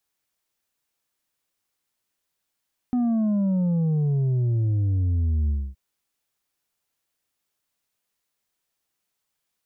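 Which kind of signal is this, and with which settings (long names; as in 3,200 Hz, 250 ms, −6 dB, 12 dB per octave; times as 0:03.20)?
bass drop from 250 Hz, over 2.82 s, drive 4.5 dB, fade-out 0.26 s, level −20 dB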